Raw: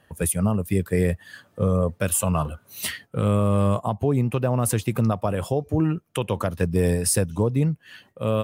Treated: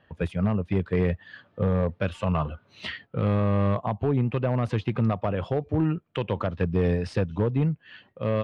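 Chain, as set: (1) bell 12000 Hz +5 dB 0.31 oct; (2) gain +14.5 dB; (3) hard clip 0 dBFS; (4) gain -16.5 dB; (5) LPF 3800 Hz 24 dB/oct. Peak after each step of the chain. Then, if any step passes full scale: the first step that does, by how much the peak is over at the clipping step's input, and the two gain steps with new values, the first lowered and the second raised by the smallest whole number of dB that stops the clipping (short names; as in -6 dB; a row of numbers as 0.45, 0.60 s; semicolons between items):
-8.5, +6.0, 0.0, -16.5, -15.5 dBFS; step 2, 6.0 dB; step 2 +8.5 dB, step 4 -10.5 dB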